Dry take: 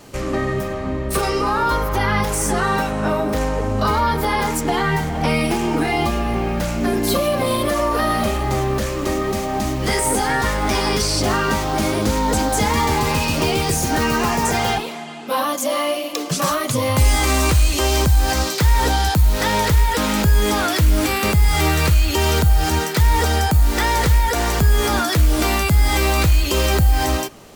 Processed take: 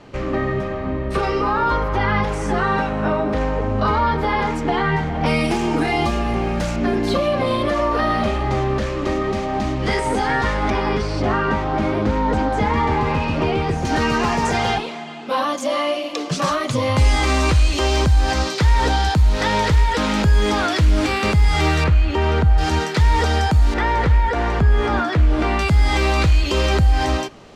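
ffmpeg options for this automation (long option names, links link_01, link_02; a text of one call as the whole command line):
ffmpeg -i in.wav -af "asetnsamples=nb_out_samples=441:pad=0,asendcmd='5.26 lowpass f 7500;6.76 lowpass f 3900;10.7 lowpass f 2200;13.85 lowpass f 5100;21.84 lowpass f 2200;22.58 lowpass f 5000;23.74 lowpass f 2300;25.59 lowpass f 4800',lowpass=3200" out.wav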